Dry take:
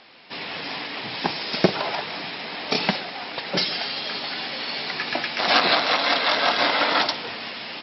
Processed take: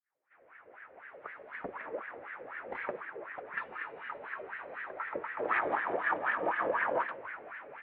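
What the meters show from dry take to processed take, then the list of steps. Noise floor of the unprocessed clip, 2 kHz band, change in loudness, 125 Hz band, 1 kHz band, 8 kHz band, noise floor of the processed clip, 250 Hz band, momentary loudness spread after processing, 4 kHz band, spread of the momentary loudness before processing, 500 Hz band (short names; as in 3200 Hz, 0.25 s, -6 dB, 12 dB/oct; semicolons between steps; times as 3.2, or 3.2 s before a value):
-35 dBFS, -10.5 dB, -12.5 dB, -23.5 dB, -10.0 dB, n/a, -63 dBFS, -17.0 dB, 16 LU, -37.0 dB, 12 LU, -9.5 dB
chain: opening faded in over 2.52 s; mistuned SSB -380 Hz 250–2700 Hz; wah 4 Hz 480–1800 Hz, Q 4.8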